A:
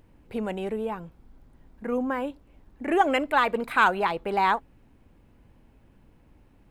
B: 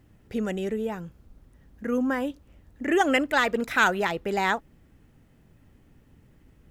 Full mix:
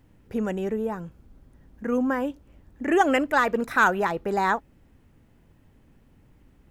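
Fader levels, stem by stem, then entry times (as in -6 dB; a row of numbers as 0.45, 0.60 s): -4.5, -2.5 dB; 0.00, 0.00 s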